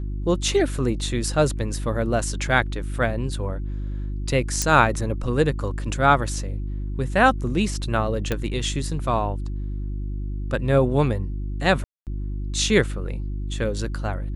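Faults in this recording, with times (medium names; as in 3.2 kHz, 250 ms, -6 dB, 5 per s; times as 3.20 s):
hum 50 Hz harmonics 7 -28 dBFS
4.62 s: pop -7 dBFS
8.32 s: pop -10 dBFS
11.84–12.07 s: dropout 228 ms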